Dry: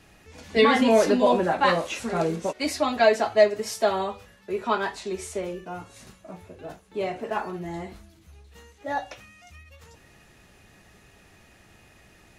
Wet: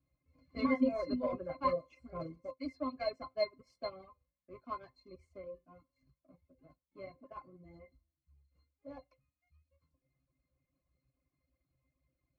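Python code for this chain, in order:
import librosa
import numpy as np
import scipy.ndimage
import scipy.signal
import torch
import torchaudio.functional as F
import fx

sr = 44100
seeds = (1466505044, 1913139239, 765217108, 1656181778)

y = fx.power_curve(x, sr, exponent=1.4)
y = fx.octave_resonator(y, sr, note='C', decay_s=0.12)
y = fx.dereverb_blind(y, sr, rt60_s=0.84)
y = y * librosa.db_to_amplitude(1.5)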